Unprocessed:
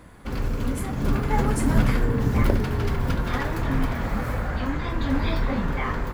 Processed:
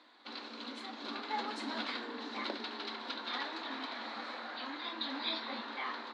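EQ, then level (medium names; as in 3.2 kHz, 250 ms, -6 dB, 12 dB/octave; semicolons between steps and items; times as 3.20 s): rippled Chebyshev high-pass 220 Hz, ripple 6 dB; four-pole ladder low-pass 4.2 kHz, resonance 80%; tilt EQ +2.5 dB/octave; +3.5 dB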